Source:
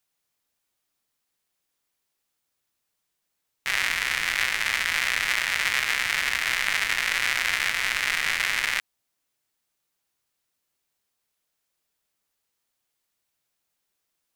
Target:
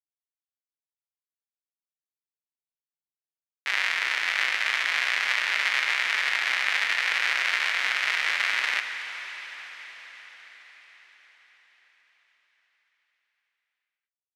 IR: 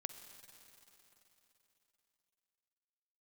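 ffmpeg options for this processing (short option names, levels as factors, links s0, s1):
-filter_complex "[0:a]aeval=exprs='val(0)*gte(abs(val(0)),0.015)':c=same,acrossover=split=330 5500:gain=0.126 1 0.178[s0][s1][s2];[s0][s1][s2]amix=inputs=3:normalize=0[s3];[1:a]atrim=start_sample=2205,asetrate=26019,aresample=44100[s4];[s3][s4]afir=irnorm=-1:irlink=0"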